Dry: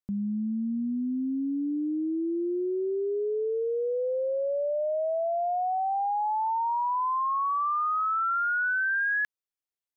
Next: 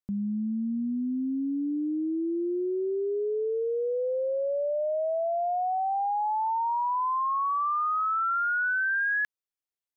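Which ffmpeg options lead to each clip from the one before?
-af anull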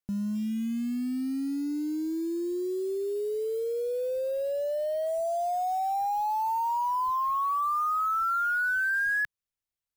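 -af "acrusher=bits=6:mode=log:mix=0:aa=0.000001,asubboost=boost=4:cutoff=140"

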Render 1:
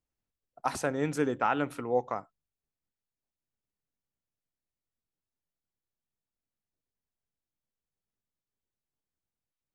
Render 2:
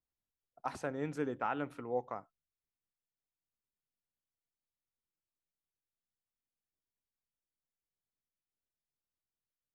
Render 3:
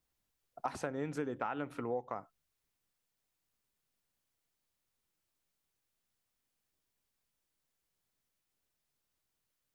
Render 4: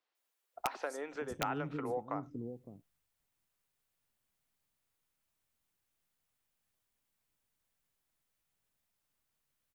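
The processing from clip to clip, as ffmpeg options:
-af "highshelf=f=4.9k:g=-10.5,volume=-7.5dB"
-af "acompressor=threshold=-44dB:ratio=6,volume=10dB"
-filter_complex "[0:a]acrossover=split=360|5100[a][b][c];[c]adelay=150[d];[a]adelay=560[e];[e][b][d]amix=inputs=3:normalize=0,aeval=exprs='(mod(16.8*val(0)+1,2)-1)/16.8':c=same,volume=1.5dB"

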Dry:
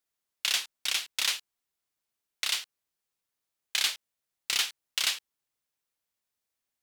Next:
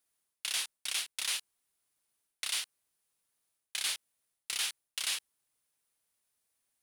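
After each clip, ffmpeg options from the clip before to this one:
-af "equalizer=f=9.7k:w=3.1:g=10.5,areverse,acompressor=threshold=-34dB:ratio=6,areverse,volume=2.5dB"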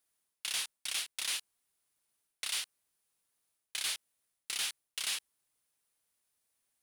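-af "asoftclip=type=tanh:threshold=-25.5dB"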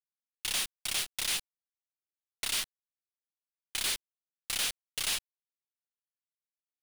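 -af "asoftclip=type=hard:threshold=-34dB,acrusher=bits=7:dc=4:mix=0:aa=0.000001,volume=4.5dB"

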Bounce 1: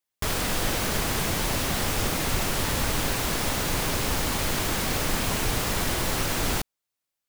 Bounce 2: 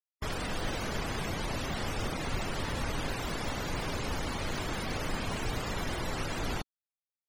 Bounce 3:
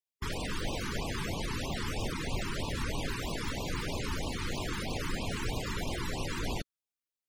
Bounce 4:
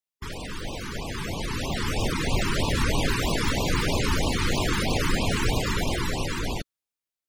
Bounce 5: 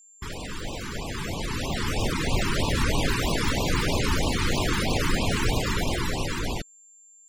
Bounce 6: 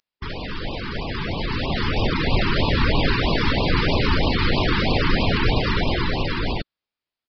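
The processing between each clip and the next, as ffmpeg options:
-af "afftfilt=real='re*gte(hypot(re,im),0.0355)':imag='im*gte(hypot(re,im),0.0355)':win_size=1024:overlap=0.75,volume=-6.5dB"
-af "afftfilt=real='re*(1-between(b*sr/1024,580*pow(1700/580,0.5+0.5*sin(2*PI*3.1*pts/sr))/1.41,580*pow(1700/580,0.5+0.5*sin(2*PI*3.1*pts/sr))*1.41))':imag='im*(1-between(b*sr/1024,580*pow(1700/580,0.5+0.5*sin(2*PI*3.1*pts/sr))/1.41,580*pow(1700/580,0.5+0.5*sin(2*PI*3.1*pts/sr))*1.41))':win_size=1024:overlap=0.75"
-af "dynaudnorm=f=500:g=7:m=10.5dB"
-af "aeval=exprs='val(0)+0.00282*sin(2*PI*7300*n/s)':c=same"
-af "aresample=11025,aresample=44100,volume=5dB"

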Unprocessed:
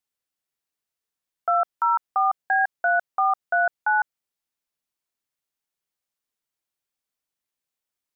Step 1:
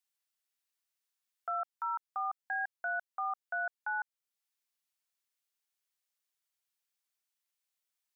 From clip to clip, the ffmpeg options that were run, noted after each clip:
-af "highpass=f=1.5k:p=1,alimiter=level_in=4dB:limit=-24dB:level=0:latency=1:release=474,volume=-4dB"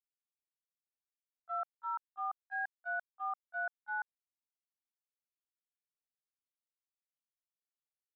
-af "agate=range=-32dB:threshold=-33dB:ratio=16:detection=peak,volume=2.5dB"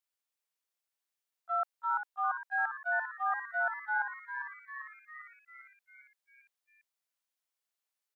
-filter_complex "[0:a]highpass=470,asplit=2[a][b];[b]asplit=7[c][d][e][f][g][h][i];[c]adelay=399,afreqshift=130,volume=-8.5dB[j];[d]adelay=798,afreqshift=260,volume=-13.2dB[k];[e]adelay=1197,afreqshift=390,volume=-18dB[l];[f]adelay=1596,afreqshift=520,volume=-22.7dB[m];[g]adelay=1995,afreqshift=650,volume=-27.4dB[n];[h]adelay=2394,afreqshift=780,volume=-32.2dB[o];[i]adelay=2793,afreqshift=910,volume=-36.9dB[p];[j][k][l][m][n][o][p]amix=inputs=7:normalize=0[q];[a][q]amix=inputs=2:normalize=0,volume=6dB"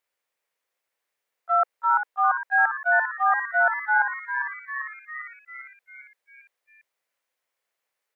-af "equalizer=f=500:t=o:w=1:g=12,equalizer=f=1k:t=o:w=1:g=4,equalizer=f=2k:t=o:w=1:g=9,volume=3dB"

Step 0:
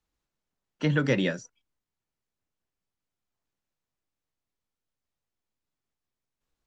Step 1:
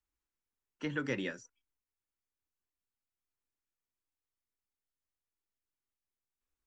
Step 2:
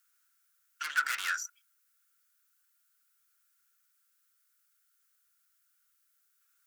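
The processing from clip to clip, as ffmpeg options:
-af "equalizer=f=160:t=o:w=0.67:g=-12,equalizer=f=630:t=o:w=0.67:g=-8,equalizer=f=4k:t=o:w=0.67:g=-6,volume=-7dB"
-af "aeval=exprs='(tanh(141*val(0)+0.4)-tanh(0.4))/141':c=same,highpass=f=1.4k:t=q:w=10,crystalizer=i=9.5:c=0"

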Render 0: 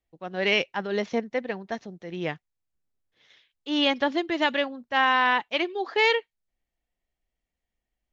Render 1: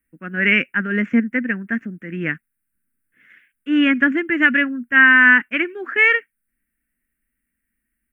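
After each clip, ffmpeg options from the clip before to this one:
-af "firequalizer=gain_entry='entry(120,0);entry(240,13);entry(390,-3);entry(830,-16);entry(1500,14);entry(2700,2);entry(3900,-29);entry(6200,-18);entry(8800,14)':delay=0.05:min_phase=1,volume=3dB"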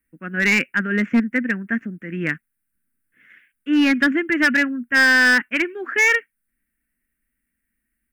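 -af "volume=11dB,asoftclip=hard,volume=-11dB"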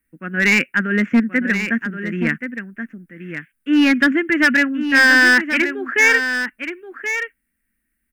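-af "aecho=1:1:1077:0.355,volume=2.5dB"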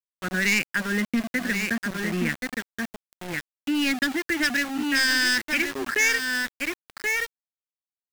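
-filter_complex "[0:a]acrossover=split=130|3000[a][b][c];[b]acompressor=threshold=-24dB:ratio=10[d];[a][d][c]amix=inputs=3:normalize=0,aeval=exprs='val(0)*gte(abs(val(0)),0.0355)':c=same"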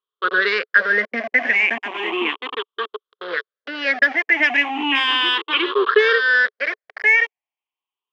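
-af "afftfilt=real='re*pow(10,16/40*sin(2*PI*(0.63*log(max(b,1)*sr/1024/100)/log(2)-(0.35)*(pts-256)/sr)))':imag='im*pow(10,16/40*sin(2*PI*(0.63*log(max(b,1)*sr/1024/100)/log(2)-(0.35)*(pts-256)/sr)))':win_size=1024:overlap=0.75,highpass=f=390:w=0.5412,highpass=f=390:w=1.3066,equalizer=f=430:t=q:w=4:g=9,equalizer=f=1.1k:t=q:w=4:g=9,equalizer=f=3.2k:t=q:w=4:g=8,lowpass=f=3.3k:w=0.5412,lowpass=f=3.3k:w=1.3066,volume=4dB"

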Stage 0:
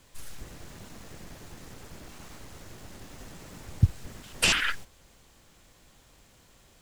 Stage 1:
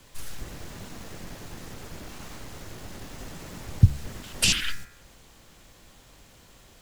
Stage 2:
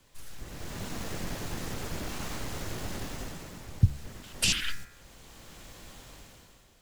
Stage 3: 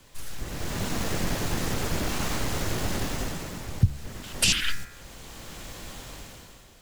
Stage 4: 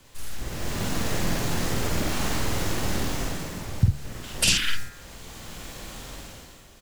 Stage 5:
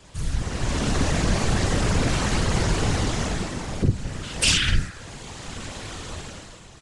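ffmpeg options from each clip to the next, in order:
-filter_complex "[0:a]bandreject=f=70.23:t=h:w=4,bandreject=f=140.46:t=h:w=4,bandreject=f=210.69:t=h:w=4,bandreject=f=280.92:t=h:w=4,bandreject=f=351.15:t=h:w=4,bandreject=f=421.38:t=h:w=4,bandreject=f=491.61:t=h:w=4,bandreject=f=561.84:t=h:w=4,bandreject=f=632.07:t=h:w=4,bandreject=f=702.3:t=h:w=4,bandreject=f=772.53:t=h:w=4,bandreject=f=842.76:t=h:w=4,bandreject=f=912.99:t=h:w=4,bandreject=f=983.22:t=h:w=4,bandreject=f=1.05345k:t=h:w=4,bandreject=f=1.12368k:t=h:w=4,bandreject=f=1.19391k:t=h:w=4,bandreject=f=1.26414k:t=h:w=4,bandreject=f=1.33437k:t=h:w=4,bandreject=f=1.4046k:t=h:w=4,bandreject=f=1.47483k:t=h:w=4,bandreject=f=1.54506k:t=h:w=4,bandreject=f=1.61529k:t=h:w=4,bandreject=f=1.68552k:t=h:w=4,bandreject=f=1.75575k:t=h:w=4,bandreject=f=1.82598k:t=h:w=4,bandreject=f=1.89621k:t=h:w=4,bandreject=f=1.96644k:t=h:w=4,bandreject=f=2.03667k:t=h:w=4,bandreject=f=2.1069k:t=h:w=4,bandreject=f=2.17713k:t=h:w=4,bandreject=f=2.24736k:t=h:w=4,bandreject=f=2.31759k:t=h:w=4,bandreject=f=2.38782k:t=h:w=4,bandreject=f=2.45805k:t=h:w=4,bandreject=f=2.52828k:t=h:w=4,bandreject=f=2.59851k:t=h:w=4,acrossover=split=270|3000[a][b][c];[b]acompressor=threshold=-43dB:ratio=6[d];[a][d][c]amix=inputs=3:normalize=0,equalizer=f=8.3k:w=1.5:g=-2,volume=5.5dB"
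-af "dynaudnorm=f=100:g=13:m=14dB,volume=-9dB"
-af "alimiter=limit=-17dB:level=0:latency=1:release=485,volume=8dB"
-filter_complex "[0:a]asplit=2[a][b];[b]adelay=49,volume=-3.5dB[c];[a][c]amix=inputs=2:normalize=0"
-af "aeval=exprs='0.447*sin(PI/2*2.24*val(0)/0.447)':c=same,afftfilt=real='hypot(re,im)*cos(2*PI*random(0))':imag='hypot(re,im)*sin(2*PI*random(1))':win_size=512:overlap=0.75" -ar 22050 -c:a nellymoser

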